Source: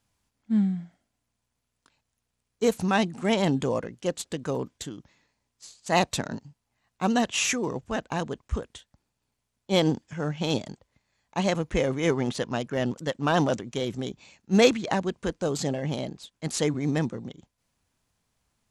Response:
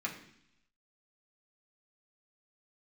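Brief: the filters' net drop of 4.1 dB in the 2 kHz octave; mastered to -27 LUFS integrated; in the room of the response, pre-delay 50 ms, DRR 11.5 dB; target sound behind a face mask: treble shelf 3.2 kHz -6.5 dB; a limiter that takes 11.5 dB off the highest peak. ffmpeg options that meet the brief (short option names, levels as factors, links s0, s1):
-filter_complex "[0:a]equalizer=f=2000:t=o:g=-3,alimiter=limit=0.141:level=0:latency=1,asplit=2[s0][s1];[1:a]atrim=start_sample=2205,adelay=50[s2];[s1][s2]afir=irnorm=-1:irlink=0,volume=0.178[s3];[s0][s3]amix=inputs=2:normalize=0,highshelf=f=3200:g=-6.5,volume=1.41"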